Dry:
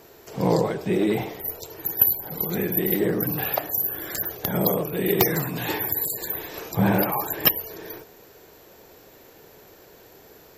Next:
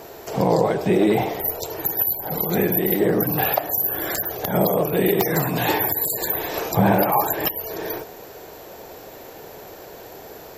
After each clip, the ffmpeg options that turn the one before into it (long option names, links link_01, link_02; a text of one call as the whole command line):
ffmpeg -i in.wav -filter_complex "[0:a]asplit=2[link_01][link_02];[link_02]acompressor=threshold=-31dB:ratio=6,volume=-0.5dB[link_03];[link_01][link_03]amix=inputs=2:normalize=0,alimiter=limit=-11.5dB:level=0:latency=1:release=173,equalizer=frequency=710:width_type=o:width=0.98:gain=6.5,volume=2dB" out.wav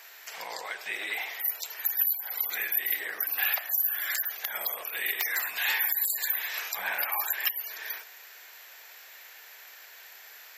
ffmpeg -i in.wav -af "highpass=frequency=1900:width_type=q:width=1.9,volume=-4.5dB" out.wav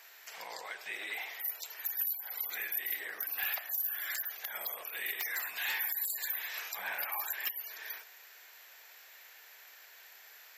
ffmpeg -i in.wav -af "asoftclip=type=tanh:threshold=-19dB,volume=-6dB" out.wav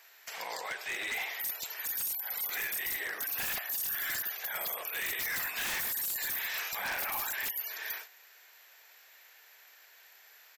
ffmpeg -i in.wav -af "aresample=32000,aresample=44100,aeval=exprs='0.0188*(abs(mod(val(0)/0.0188+3,4)-2)-1)':channel_layout=same,agate=range=-8dB:threshold=-51dB:ratio=16:detection=peak,volume=5.5dB" out.wav